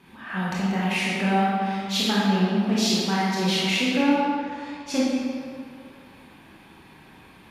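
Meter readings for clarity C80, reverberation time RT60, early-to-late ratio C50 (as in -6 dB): -0.5 dB, 2.2 s, -3.0 dB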